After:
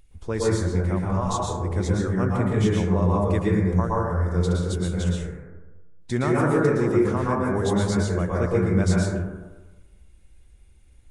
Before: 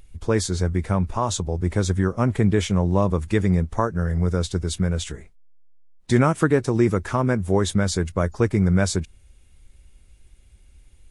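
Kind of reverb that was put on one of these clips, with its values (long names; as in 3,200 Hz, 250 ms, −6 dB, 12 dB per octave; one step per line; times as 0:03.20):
dense smooth reverb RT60 1.2 s, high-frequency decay 0.25×, pre-delay 105 ms, DRR −4.5 dB
level −7.5 dB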